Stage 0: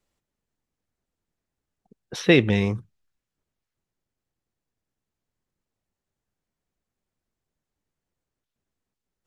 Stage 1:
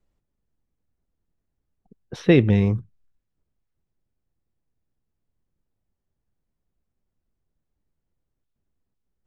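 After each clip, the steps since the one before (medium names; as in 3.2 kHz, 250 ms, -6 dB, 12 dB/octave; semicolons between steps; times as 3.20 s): tilt EQ -2.5 dB/octave; trim -2.5 dB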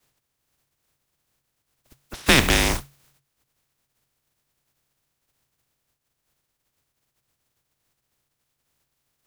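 spectral contrast reduction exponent 0.31; frequency shift -140 Hz; trim -1 dB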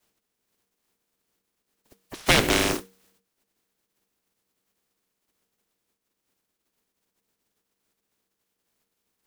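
ring modulator 330 Hz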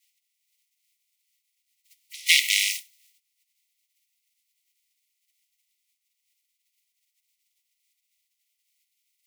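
brick-wall FIR high-pass 1.9 kHz; trim +3.5 dB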